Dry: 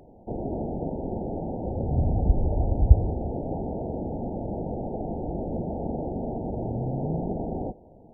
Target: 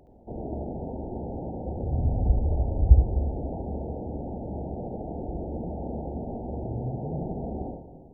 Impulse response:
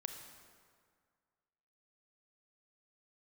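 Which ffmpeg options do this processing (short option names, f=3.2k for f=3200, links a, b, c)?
-filter_complex "[0:a]equalizer=f=64:w=3.1:g=8,asplit=2[a][b];[1:a]atrim=start_sample=2205,adelay=70[c];[b][c]afir=irnorm=-1:irlink=0,volume=-0.5dB[d];[a][d]amix=inputs=2:normalize=0,volume=-5.5dB"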